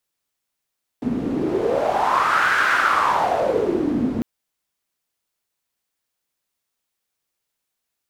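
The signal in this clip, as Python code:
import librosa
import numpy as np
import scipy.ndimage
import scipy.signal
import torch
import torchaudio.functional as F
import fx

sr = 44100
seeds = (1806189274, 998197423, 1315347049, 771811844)

y = fx.wind(sr, seeds[0], length_s=3.2, low_hz=240.0, high_hz=1500.0, q=5.6, gusts=1, swing_db=4.5)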